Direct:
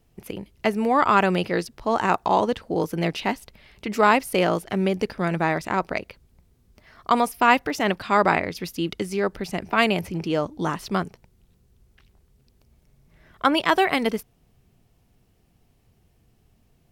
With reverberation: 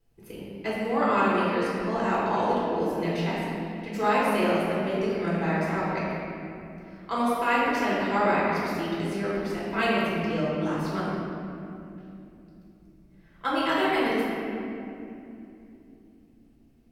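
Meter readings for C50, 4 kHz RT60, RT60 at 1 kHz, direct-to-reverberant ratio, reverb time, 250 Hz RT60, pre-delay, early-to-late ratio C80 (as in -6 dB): -3.0 dB, 1.7 s, 2.5 s, -8.5 dB, 2.9 s, 4.7 s, 3 ms, -1.0 dB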